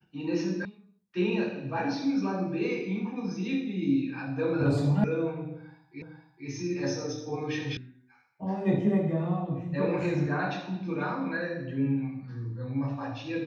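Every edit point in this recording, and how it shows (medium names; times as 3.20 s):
0.65 s: sound stops dead
5.04 s: sound stops dead
6.02 s: repeat of the last 0.46 s
7.77 s: sound stops dead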